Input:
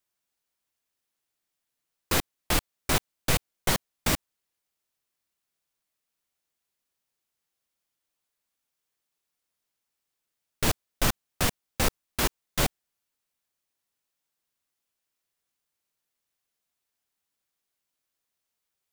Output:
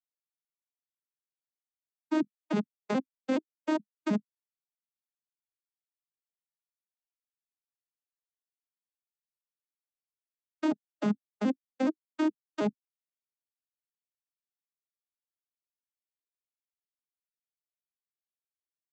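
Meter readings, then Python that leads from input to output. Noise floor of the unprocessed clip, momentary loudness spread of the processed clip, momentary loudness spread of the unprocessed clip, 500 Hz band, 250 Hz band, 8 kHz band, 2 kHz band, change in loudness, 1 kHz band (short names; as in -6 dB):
-84 dBFS, 2 LU, 1 LU, -0.5 dB, +6.0 dB, under -25 dB, -11.0 dB, -4.0 dB, -6.5 dB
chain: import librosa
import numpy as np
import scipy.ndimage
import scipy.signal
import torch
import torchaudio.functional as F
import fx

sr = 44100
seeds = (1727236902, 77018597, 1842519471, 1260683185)

y = fx.vocoder_arp(x, sr, chord='major triad', root=56, every_ms=105)
y = fx.level_steps(y, sr, step_db=17)
y = fx.spectral_expand(y, sr, expansion=1.5)
y = F.gain(torch.from_numpy(y), 6.0).numpy()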